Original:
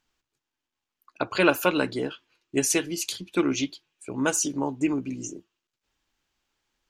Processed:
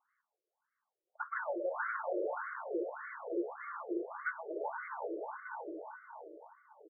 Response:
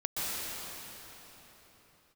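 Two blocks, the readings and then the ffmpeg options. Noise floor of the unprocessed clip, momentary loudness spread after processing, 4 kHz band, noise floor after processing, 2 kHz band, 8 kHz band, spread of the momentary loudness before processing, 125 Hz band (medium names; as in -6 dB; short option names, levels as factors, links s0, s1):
under -85 dBFS, 14 LU, under -40 dB, under -85 dBFS, -9.5 dB, under -40 dB, 13 LU, under -40 dB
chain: -filter_complex "[0:a]asplit=2[s0][s1];[s1]highpass=f=720:p=1,volume=3.55,asoftclip=type=tanh:threshold=0.596[s2];[s0][s2]amix=inputs=2:normalize=0,lowpass=f=2500:p=1,volume=0.501,aecho=1:1:418|836|1254|1672:0.237|0.0996|0.0418|0.0176,asplit=2[s3][s4];[1:a]atrim=start_sample=2205,lowpass=f=1700:w=0.5412,lowpass=f=1700:w=1.3066,adelay=124[s5];[s4][s5]afir=irnorm=-1:irlink=0,volume=0.316[s6];[s3][s6]amix=inputs=2:normalize=0,acompressor=threshold=0.0562:ratio=2,asoftclip=type=tanh:threshold=0.0422,afftfilt=real='re*between(b*sr/1024,440*pow(1600/440,0.5+0.5*sin(2*PI*1.7*pts/sr))/1.41,440*pow(1600/440,0.5+0.5*sin(2*PI*1.7*pts/sr))*1.41)':imag='im*between(b*sr/1024,440*pow(1600/440,0.5+0.5*sin(2*PI*1.7*pts/sr))/1.41,440*pow(1600/440,0.5+0.5*sin(2*PI*1.7*pts/sr))*1.41)':win_size=1024:overlap=0.75"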